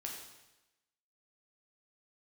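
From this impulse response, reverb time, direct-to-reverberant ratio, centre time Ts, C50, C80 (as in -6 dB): 1.0 s, -1.5 dB, 45 ms, 3.5 dB, 5.5 dB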